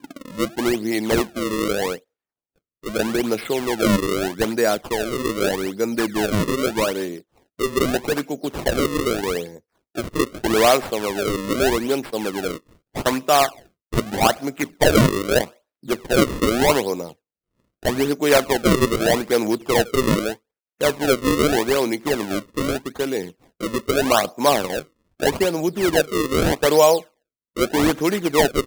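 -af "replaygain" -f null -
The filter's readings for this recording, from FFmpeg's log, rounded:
track_gain = -0.1 dB
track_peak = 0.544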